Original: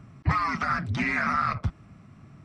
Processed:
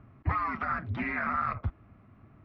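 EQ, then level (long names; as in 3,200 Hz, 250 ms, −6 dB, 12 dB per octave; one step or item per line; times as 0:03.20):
high-frequency loss of the air 380 metres
parametric band 160 Hz −11.5 dB 0.65 octaves
high-shelf EQ 3,700 Hz −5.5 dB
−1.5 dB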